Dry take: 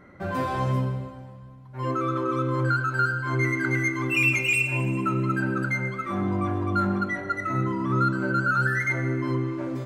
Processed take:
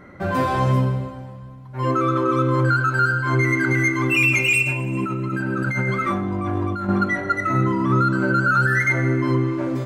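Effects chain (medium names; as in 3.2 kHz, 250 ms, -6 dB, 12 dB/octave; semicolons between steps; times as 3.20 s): 4.62–6.89 s: compressor with a negative ratio -30 dBFS, ratio -1; loudness maximiser +15 dB; trim -8.5 dB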